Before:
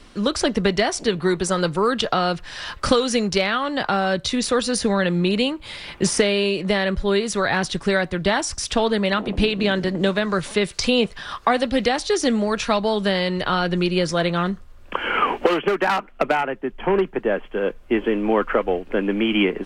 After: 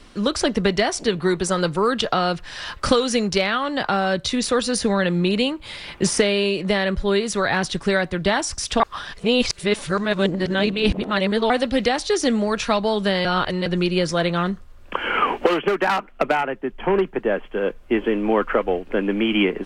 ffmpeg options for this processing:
-filter_complex "[0:a]asplit=5[s0][s1][s2][s3][s4];[s0]atrim=end=8.802[s5];[s1]atrim=start=8.798:end=11.502,asetpts=PTS-STARTPTS,areverse[s6];[s2]atrim=start=11.498:end=13.252[s7];[s3]atrim=start=13.248:end=13.662,asetpts=PTS-STARTPTS,areverse[s8];[s4]atrim=start=13.658[s9];[s5][s6]acrossfade=d=0.004:c1=hsin:c2=hsin[s10];[s10][s7]acrossfade=d=0.004:c1=hsin:c2=hsin[s11];[s11][s8]acrossfade=d=0.004:c1=hsin:c2=hsin[s12];[s12][s9]acrossfade=d=0.004:c1=hsin:c2=hsin"

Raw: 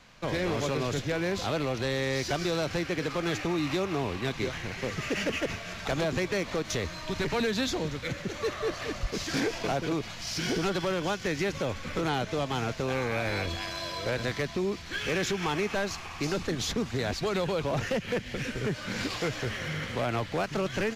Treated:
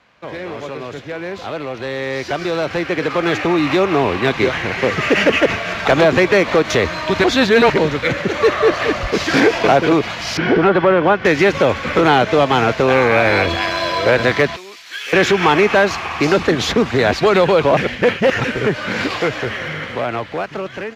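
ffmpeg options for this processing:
-filter_complex "[0:a]asettb=1/sr,asplit=3[s0][s1][s2];[s0]atrim=end=10.374[s3];[s1]atrim=start=10.37:end=11.25,asetpts=PTS-STARTPTS,afade=t=in:d=0.004:c=qsin,afade=t=out:st=0.876:d=0.004:c=qsin,lowpass=2000[s4];[s2]atrim=start=11.246[s5];[s3][s4]acrossfade=d=0.004:c1=hsin:c2=qsin[s6];[s6][s5]acrossfade=d=0.004:c1=qsin:c2=hsin,asettb=1/sr,asplit=3[s7][s8][s9];[s7]atrim=end=14.564[s10];[s8]atrim=start=14.56:end=15.13,asetpts=PTS-STARTPTS,afade=t=in:d=0.004:c=qsin,afade=t=out:st=0.566:d=0.004:c=qsin,aderivative[s11];[s9]atrim=start=15.126[s12];[s10][s11]acrossfade=d=0.004:c1=hsin:c2=qsin[s13];[s13][s12]acrossfade=d=0.004:c1=qsin:c2=hsin,asplit=5[s14][s15][s16][s17][s18];[s14]atrim=end=7.242[s19];[s15]atrim=start=7.238:end=7.782,asetpts=PTS-STARTPTS,areverse[s20];[s16]atrim=start=7.778:end=17.772[s21];[s17]atrim=start=17.768:end=18.442,asetpts=PTS-STARTPTS,areverse[s22];[s18]atrim=start=18.438[s23];[s19][s20]acrossfade=d=0.004:c1=hsin:c2=hsin[s24];[s24][s21]acrossfade=d=0.004:c1=hsin:c2=hsin[s25];[s25][s22]acrossfade=d=0.004:c1=hsin:c2=hsin[s26];[s26][s23]acrossfade=d=0.004:c1=hsin:c2=hsin,highpass=50,bass=f=250:g=-8,treble=f=4000:g=-13,dynaudnorm=f=860:g=7:m=6.31,volume=1.41"

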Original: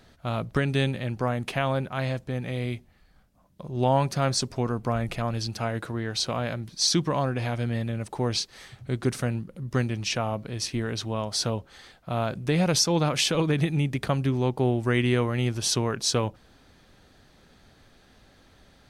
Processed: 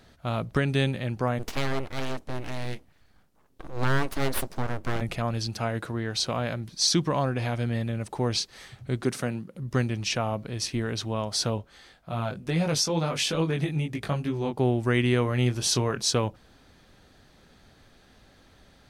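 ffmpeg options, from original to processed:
-filter_complex "[0:a]asplit=3[s0][s1][s2];[s0]afade=t=out:st=1.38:d=0.02[s3];[s1]aeval=exprs='abs(val(0))':c=same,afade=t=in:st=1.38:d=0.02,afade=t=out:st=5:d=0.02[s4];[s2]afade=t=in:st=5:d=0.02[s5];[s3][s4][s5]amix=inputs=3:normalize=0,asettb=1/sr,asplit=3[s6][s7][s8];[s6]atrim=end=9.034[s9];[s7]atrim=start=9.03:end=9.56,asetpts=PTS-STARTPTS,afade=t=in:d=0.004:c=qsin,afade=t=out:st=0.526:d=0.004:c=qsin,highpass=150[s10];[s8]atrim=start=9.556[s11];[s9][s10]acrossfade=d=0.004:c1=hsin:c2=qsin[s12];[s12][s11]acrossfade=d=0.004:c1=qsin:c2=hsin,asplit=3[s13][s14][s15];[s13]afade=t=out:st=11.57:d=0.02[s16];[s14]flanger=delay=18:depth=2.6:speed=2.3,afade=t=in:st=11.57:d=0.02,afade=t=out:st=14.57:d=0.02[s17];[s15]afade=t=in:st=14.57:d=0.02[s18];[s16][s17][s18]amix=inputs=3:normalize=0,asettb=1/sr,asplit=3[s19][s20][s21];[s19]atrim=end=15.234[s22];[s20]atrim=start=15.23:end=16.04,asetpts=PTS-STARTPTS,afade=t=in:d=0.004:c=qsin,afade=t=out:st=0.806:d=0.004:c=qsin,asplit=2[s23][s24];[s24]adelay=24,volume=0.316[s25];[s23][s25]amix=inputs=2:normalize=0,atrim=end_sample=35721[s26];[s21]atrim=start=16.036[s27];[s22][s26]acrossfade=d=0.004:c1=hsin:c2=qsin[s28];[s28][s27]acrossfade=d=0.004:c1=qsin:c2=hsin"

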